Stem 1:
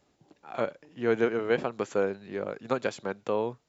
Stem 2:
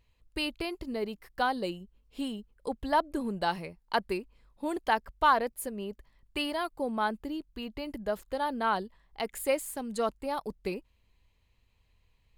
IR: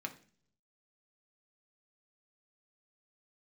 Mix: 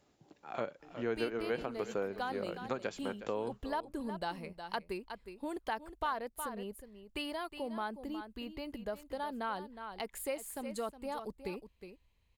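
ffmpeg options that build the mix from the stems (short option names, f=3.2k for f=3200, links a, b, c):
-filter_complex "[0:a]volume=-2dB,asplit=2[a][b];[b]volume=-16dB[c];[1:a]adelay=800,volume=-4.5dB,asplit=2[d][e];[e]volume=-12.5dB[f];[c][f]amix=inputs=2:normalize=0,aecho=0:1:363:1[g];[a][d][g]amix=inputs=3:normalize=0,acompressor=threshold=-37dB:ratio=2"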